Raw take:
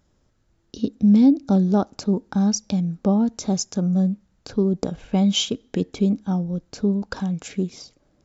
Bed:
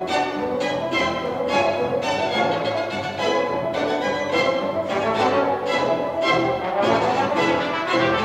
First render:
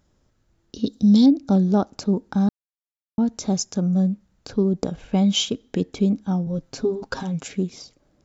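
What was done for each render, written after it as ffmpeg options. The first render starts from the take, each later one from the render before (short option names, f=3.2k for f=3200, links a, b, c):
-filter_complex "[0:a]asettb=1/sr,asplit=3[a][b][c];[a]atrim=end=0.864[d];[b]atrim=start=0.86:end=1.26,asetpts=PTS-STARTPTS,afade=t=in:d=0.004:c=qsin,afade=t=out:st=0.396:d=0.004:c=qsin,highshelf=f=3k:t=q:w=3:g=8.5[e];[c]atrim=start=1.256[f];[d][e]acrossfade=d=0.004:c1=hsin:c2=qsin[g];[g][f]acrossfade=d=0.004:c1=qsin:c2=hsin,asettb=1/sr,asplit=3[h][i][j];[h]atrim=end=6.464[k];[i]atrim=start=6.46:end=7.47,asetpts=PTS-STARTPTS,afade=t=in:d=0.004:c=qsin,afade=t=out:st=1.006:d=0.004:c=qsin,aecho=1:1:7.5:0.94,atrim=end_sample=44541[l];[j]atrim=start=7.466[m];[k][l]acrossfade=d=0.004:c1=hsin:c2=qsin[n];[n][m]acrossfade=d=0.004:c1=qsin:c2=hsin,asplit=3[o][p][q];[o]atrim=end=2.49,asetpts=PTS-STARTPTS,afade=t=out:st=2.486:d=0.004:c=hsin[r];[p]atrim=start=2.49:end=3.18,asetpts=PTS-STARTPTS,volume=0[s];[q]atrim=start=3.18,asetpts=PTS-STARTPTS,afade=t=in:d=0.004:c=hsin[t];[r][s][t]concat=n=3:v=0:a=1"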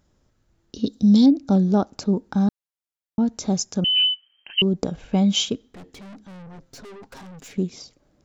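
-filter_complex "[0:a]asettb=1/sr,asplit=3[a][b][c];[a]atrim=end=3.844[d];[b]atrim=start=3.84:end=4.62,asetpts=PTS-STARTPTS,afade=t=in:d=0.004:c=qsin,afade=t=out:st=0.776:d=0.004:c=qsin,lowpass=f=2.7k:t=q:w=0.5098,lowpass=f=2.7k:t=q:w=0.6013,lowpass=f=2.7k:t=q:w=0.9,lowpass=f=2.7k:t=q:w=2.563,afreqshift=-3200[e];[c]atrim=start=4.616[f];[d][e]acrossfade=d=0.004:c1=hsin:c2=qsin[g];[g][f]acrossfade=d=0.004:c1=qsin:c2=hsin,asettb=1/sr,asplit=3[h][i][j];[h]atrim=end=5.674[k];[i]atrim=start=5.67:end=7.58,asetpts=PTS-STARTPTS,afade=t=in:d=0.004:c=qsin,afade=t=out:st=1.906:d=0.004:c=qsin,aeval=exprs='(tanh(100*val(0)+0.3)-tanh(0.3))/100':c=same[l];[j]atrim=start=7.576[m];[k][l]acrossfade=d=0.004:c1=hsin:c2=qsin[n];[n][m]acrossfade=d=0.004:c1=qsin:c2=hsin"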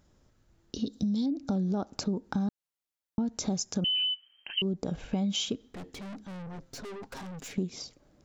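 -af "alimiter=limit=-15.5dB:level=0:latency=1:release=84,acompressor=threshold=-27dB:ratio=6"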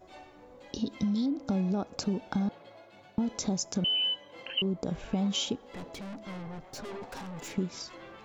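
-filter_complex "[1:a]volume=-29dB[a];[0:a][a]amix=inputs=2:normalize=0"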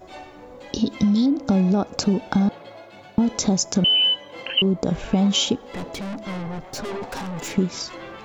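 -af "volume=10.5dB"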